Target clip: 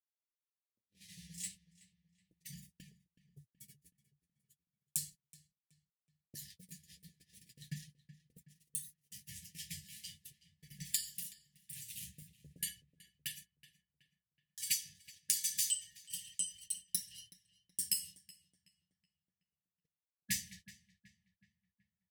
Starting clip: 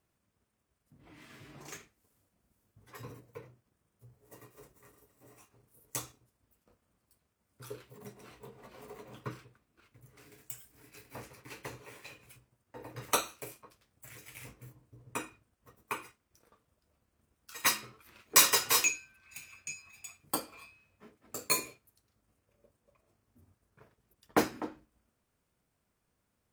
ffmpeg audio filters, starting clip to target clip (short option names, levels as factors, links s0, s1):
-filter_complex "[0:a]afftfilt=real='re*(1-between(b*sr/4096,180,1400))':imag='im*(1-between(b*sr/4096,180,1400))':win_size=4096:overlap=0.75,agate=range=0.00141:threshold=0.00141:ratio=16:detection=peak,equalizer=f=125:t=o:w=1:g=-7,equalizer=f=250:t=o:w=1:g=10,equalizer=f=500:t=o:w=1:g=11,equalizer=f=1000:t=o:w=1:g=-6,equalizer=f=2000:t=o:w=1:g=-10,equalizer=f=4000:t=o:w=1:g=5,equalizer=f=8000:t=o:w=1:g=6,acompressor=threshold=0.0251:ratio=16,asetrate=52920,aresample=44100,flanger=delay=3.6:depth=8.7:regen=23:speed=0.36:shape=triangular,asplit=2[s0][s1];[s1]adelay=374,lowpass=f=2600:p=1,volume=0.178,asplit=2[s2][s3];[s3]adelay=374,lowpass=f=2600:p=1,volume=0.5,asplit=2[s4][s5];[s5]adelay=374,lowpass=f=2600:p=1,volume=0.5,asplit=2[s6][s7];[s7]adelay=374,lowpass=f=2600:p=1,volume=0.5,asplit=2[s8][s9];[s9]adelay=374,lowpass=f=2600:p=1,volume=0.5[s10];[s0][s2][s4][s6][s8][s10]amix=inputs=6:normalize=0,volume=2"